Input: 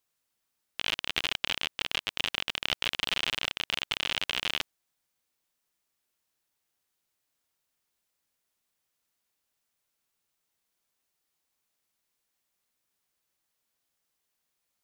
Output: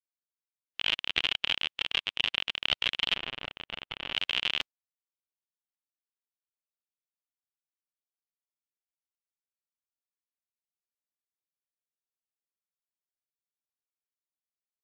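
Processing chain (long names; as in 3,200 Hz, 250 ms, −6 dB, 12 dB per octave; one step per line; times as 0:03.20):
0:03.16–0:04.13: high-shelf EQ 2,400 Hz −11 dB
every bin expanded away from the loudest bin 1.5 to 1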